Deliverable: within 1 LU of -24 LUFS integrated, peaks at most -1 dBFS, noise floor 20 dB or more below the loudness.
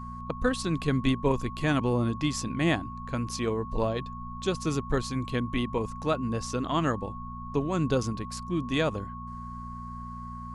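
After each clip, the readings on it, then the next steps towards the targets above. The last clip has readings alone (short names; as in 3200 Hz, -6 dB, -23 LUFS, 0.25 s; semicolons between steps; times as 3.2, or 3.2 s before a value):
hum 60 Hz; harmonics up to 240 Hz; hum level -38 dBFS; steady tone 1100 Hz; tone level -40 dBFS; loudness -30.0 LUFS; peak -12.0 dBFS; loudness target -24.0 LUFS
-> de-hum 60 Hz, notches 4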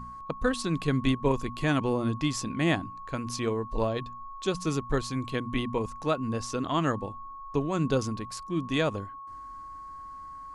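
hum none; steady tone 1100 Hz; tone level -40 dBFS
-> notch 1100 Hz, Q 30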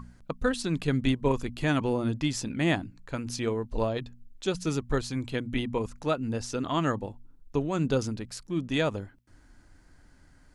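steady tone none; loudness -30.0 LUFS; peak -12.5 dBFS; loudness target -24.0 LUFS
-> gain +6 dB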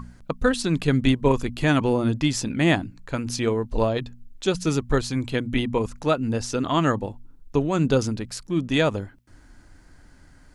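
loudness -24.0 LUFS; peak -6.5 dBFS; noise floor -51 dBFS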